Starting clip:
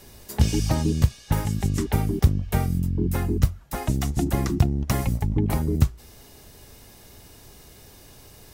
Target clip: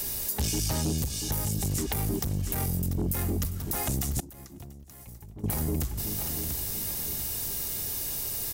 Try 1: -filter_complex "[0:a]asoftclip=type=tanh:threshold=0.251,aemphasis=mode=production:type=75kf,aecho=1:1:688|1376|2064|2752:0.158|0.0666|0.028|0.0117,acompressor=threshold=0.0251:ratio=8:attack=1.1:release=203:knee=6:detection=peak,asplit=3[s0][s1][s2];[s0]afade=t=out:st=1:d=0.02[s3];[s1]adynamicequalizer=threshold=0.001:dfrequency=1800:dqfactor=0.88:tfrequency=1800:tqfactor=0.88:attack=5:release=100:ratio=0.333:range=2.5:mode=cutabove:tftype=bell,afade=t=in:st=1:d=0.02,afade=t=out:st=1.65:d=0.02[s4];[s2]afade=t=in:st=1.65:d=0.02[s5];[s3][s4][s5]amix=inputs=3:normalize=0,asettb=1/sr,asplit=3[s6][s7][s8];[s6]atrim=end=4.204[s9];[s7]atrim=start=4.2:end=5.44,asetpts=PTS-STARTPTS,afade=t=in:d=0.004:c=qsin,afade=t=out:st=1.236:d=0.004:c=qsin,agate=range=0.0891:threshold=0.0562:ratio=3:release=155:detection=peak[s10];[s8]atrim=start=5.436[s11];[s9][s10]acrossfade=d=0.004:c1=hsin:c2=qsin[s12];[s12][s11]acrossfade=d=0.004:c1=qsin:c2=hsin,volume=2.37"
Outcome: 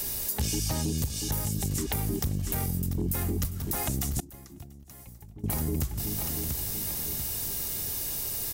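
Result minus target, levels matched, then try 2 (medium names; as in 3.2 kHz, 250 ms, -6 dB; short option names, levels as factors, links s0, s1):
saturation: distortion -7 dB
-filter_complex "[0:a]asoftclip=type=tanh:threshold=0.106,aemphasis=mode=production:type=75kf,aecho=1:1:688|1376|2064|2752:0.158|0.0666|0.028|0.0117,acompressor=threshold=0.0251:ratio=8:attack=1.1:release=203:knee=6:detection=peak,asplit=3[s0][s1][s2];[s0]afade=t=out:st=1:d=0.02[s3];[s1]adynamicequalizer=threshold=0.001:dfrequency=1800:dqfactor=0.88:tfrequency=1800:tqfactor=0.88:attack=5:release=100:ratio=0.333:range=2.5:mode=cutabove:tftype=bell,afade=t=in:st=1:d=0.02,afade=t=out:st=1.65:d=0.02[s4];[s2]afade=t=in:st=1.65:d=0.02[s5];[s3][s4][s5]amix=inputs=3:normalize=0,asettb=1/sr,asplit=3[s6][s7][s8];[s6]atrim=end=4.204[s9];[s7]atrim=start=4.2:end=5.44,asetpts=PTS-STARTPTS,afade=t=in:d=0.004:c=qsin,afade=t=out:st=1.236:d=0.004:c=qsin,agate=range=0.0891:threshold=0.0562:ratio=3:release=155:detection=peak[s10];[s8]atrim=start=5.436[s11];[s9][s10]acrossfade=d=0.004:c1=hsin:c2=qsin[s12];[s12][s11]acrossfade=d=0.004:c1=qsin:c2=hsin,volume=2.37"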